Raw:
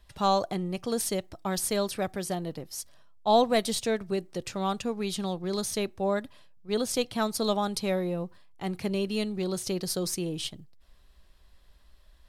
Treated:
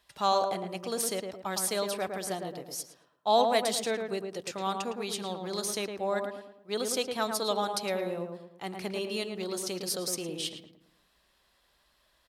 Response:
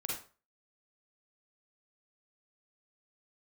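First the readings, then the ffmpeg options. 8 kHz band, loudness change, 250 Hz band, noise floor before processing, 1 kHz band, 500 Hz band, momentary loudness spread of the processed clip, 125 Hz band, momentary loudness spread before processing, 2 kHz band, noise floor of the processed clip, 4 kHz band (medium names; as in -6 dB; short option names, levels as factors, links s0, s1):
0.0 dB, -2.0 dB, -7.0 dB, -58 dBFS, -0.5 dB, -2.0 dB, 11 LU, -8.5 dB, 10 LU, +0.5 dB, -70 dBFS, 0.0 dB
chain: -filter_complex "[0:a]highpass=f=550:p=1,asplit=2[s0][s1];[s1]adelay=110,lowpass=f=1500:p=1,volume=0.631,asplit=2[s2][s3];[s3]adelay=110,lowpass=f=1500:p=1,volume=0.44,asplit=2[s4][s5];[s5]adelay=110,lowpass=f=1500:p=1,volume=0.44,asplit=2[s6][s7];[s7]adelay=110,lowpass=f=1500:p=1,volume=0.44,asplit=2[s8][s9];[s9]adelay=110,lowpass=f=1500:p=1,volume=0.44,asplit=2[s10][s11];[s11]adelay=110,lowpass=f=1500:p=1,volume=0.44[s12];[s2][s4][s6][s8][s10][s12]amix=inputs=6:normalize=0[s13];[s0][s13]amix=inputs=2:normalize=0"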